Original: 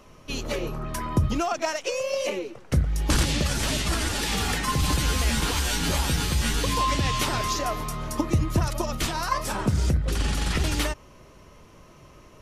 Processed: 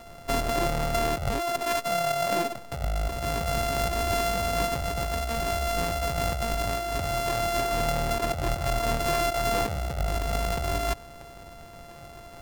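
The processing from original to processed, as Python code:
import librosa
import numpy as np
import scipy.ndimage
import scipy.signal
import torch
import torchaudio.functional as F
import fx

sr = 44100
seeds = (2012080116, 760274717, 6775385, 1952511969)

y = np.r_[np.sort(x[:len(x) // 64 * 64].reshape(-1, 64), axis=1).ravel(), x[len(x) // 64 * 64:]]
y = fx.peak_eq(y, sr, hz=770.0, db=4.5, octaves=1.3)
y = fx.over_compress(y, sr, threshold_db=-27.0, ratio=-1.0)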